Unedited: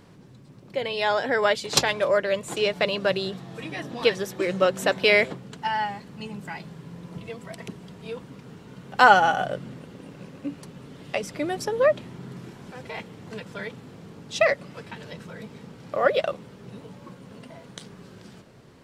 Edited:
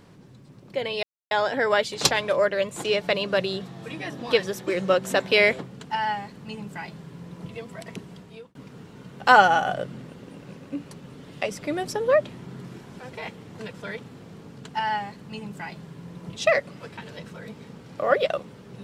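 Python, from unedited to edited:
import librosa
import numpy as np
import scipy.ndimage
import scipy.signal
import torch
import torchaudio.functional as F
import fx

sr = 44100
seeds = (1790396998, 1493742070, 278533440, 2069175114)

y = fx.edit(x, sr, fx.insert_silence(at_s=1.03, length_s=0.28),
    fx.duplicate(start_s=5.46, length_s=1.78, to_s=14.3),
    fx.fade_out_span(start_s=7.87, length_s=0.4), tone=tone)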